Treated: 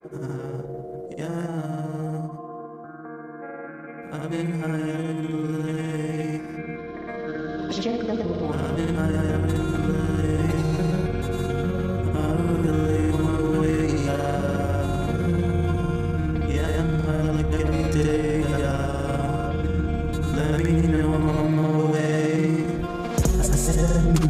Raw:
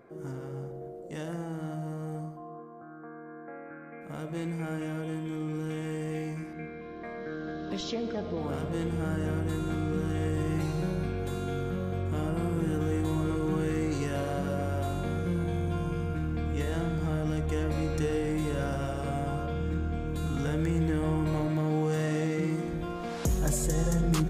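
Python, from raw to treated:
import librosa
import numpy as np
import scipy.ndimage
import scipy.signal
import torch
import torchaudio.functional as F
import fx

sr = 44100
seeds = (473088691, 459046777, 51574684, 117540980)

y = fx.granulator(x, sr, seeds[0], grain_ms=100.0, per_s=20.0, spray_ms=100.0, spread_st=0)
y = y * librosa.db_to_amplitude(8.5)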